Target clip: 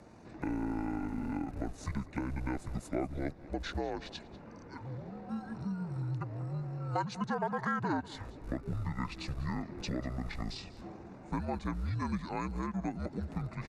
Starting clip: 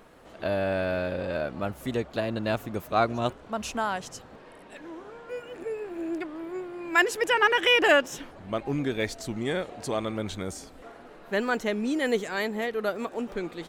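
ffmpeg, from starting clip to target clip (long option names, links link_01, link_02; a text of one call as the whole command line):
ffmpeg -i in.wav -filter_complex "[0:a]acrossover=split=130[link_01][link_02];[link_01]acrusher=bits=7:mix=0:aa=0.000001[link_03];[link_03][link_02]amix=inputs=2:normalize=0,afreqshift=-110,bandreject=frequency=5500:width=6.5,asetrate=25476,aresample=44100,atempo=1.73107,acompressor=threshold=-34dB:ratio=3,asplit=2[link_04][link_05];[link_05]aecho=0:1:194:0.112[link_06];[link_04][link_06]amix=inputs=2:normalize=0" out.wav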